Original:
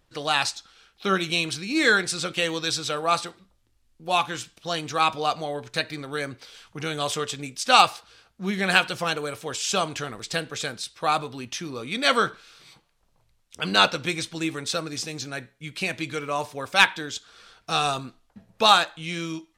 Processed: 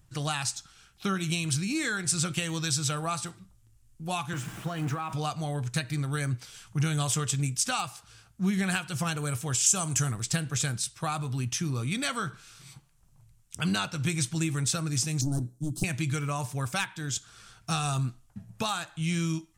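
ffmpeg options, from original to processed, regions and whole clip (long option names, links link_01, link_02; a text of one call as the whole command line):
ffmpeg -i in.wav -filter_complex "[0:a]asettb=1/sr,asplit=3[link_01][link_02][link_03];[link_01]atrim=end=4.334[link_04];[link_02]atrim=start=4.33:end=5.13,asetpts=PTS-STARTPTS,afade=type=in:duration=0.004:curve=qsin,afade=type=out:start_time=0.796:duration=0.004:curve=qsin,aeval=exprs='val(0)+0.5*0.0316*sgn(val(0))':channel_layout=same,acrossover=split=160 2300:gain=0.158 1 0.141[link_05][link_06][link_07];[link_05][link_06][link_07]amix=inputs=3:normalize=0,acompressor=threshold=-27dB:ratio=4:attack=3.2:release=140:knee=1:detection=peak[link_08];[link_03]atrim=start=5.126[link_09];[link_04][link_08]acrossfade=duration=0.004:curve1=hsin:curve2=qsin[link_10];[link_10][link_09]acrossfade=duration=0.004:curve1=qsin:curve2=hsin,asettb=1/sr,asplit=3[link_11][link_12][link_13];[link_11]atrim=end=9.664[link_14];[link_12]atrim=start=9.66:end=10.12,asetpts=PTS-STARTPTS,afade=type=in:duration=0.004:curve=qsin,afade=type=out:start_time=0.456:duration=0.004:curve=qsin,highpass=49,highshelf=frequency=5300:width_type=q:width=1.5:gain=7.5[link_15];[link_13]atrim=start=10.116[link_16];[link_14][link_15]acrossfade=duration=0.004:curve1=hsin:curve2=qsin[link_17];[link_17][link_16]acrossfade=duration=0.004:curve1=qsin:curve2=hsin,asettb=1/sr,asplit=3[link_18][link_19][link_20];[link_18]atrim=end=15.214[link_21];[link_19]atrim=start=15.21:end=15.84,asetpts=PTS-STARTPTS,afade=type=in:duration=0.004:curve=qsin,afade=type=out:start_time=0.626:duration=0.004:curve=qsin,equalizer=frequency=300:width_type=o:width=0.64:gain=14,aeval=exprs='clip(val(0),-1,0.0224)':channel_layout=same,asuperstop=centerf=2200:order=4:qfactor=0.51[link_22];[link_20]atrim=start=15.836[link_23];[link_21][link_22]acrossfade=duration=0.004:curve1=hsin:curve2=qsin[link_24];[link_24][link_23]acrossfade=duration=0.004:curve1=qsin:curve2=hsin,acompressor=threshold=-25dB:ratio=6,equalizer=frequency=125:width_type=o:width=1:gain=11,equalizer=frequency=250:width_type=o:width=1:gain=-4,equalizer=frequency=500:width_type=o:width=1:gain=-12,equalizer=frequency=1000:width_type=o:width=1:gain=-4,equalizer=frequency=2000:width_type=o:width=1:gain=-5,equalizer=frequency=4000:width_type=o:width=1:gain=-9,equalizer=frequency=8000:width_type=o:width=1:gain=5,volume=4.5dB" out.wav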